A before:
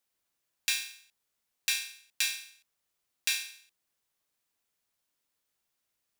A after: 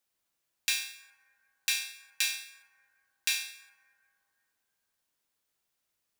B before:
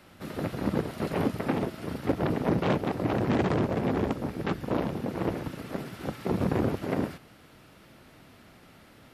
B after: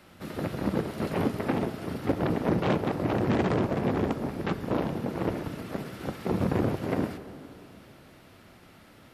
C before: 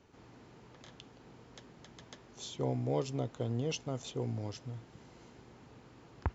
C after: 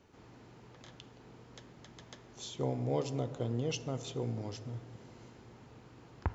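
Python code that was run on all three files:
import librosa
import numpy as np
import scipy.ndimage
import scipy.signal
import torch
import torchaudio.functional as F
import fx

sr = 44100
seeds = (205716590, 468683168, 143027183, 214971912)

y = fx.rev_plate(x, sr, seeds[0], rt60_s=3.0, hf_ratio=0.25, predelay_ms=0, drr_db=11.5)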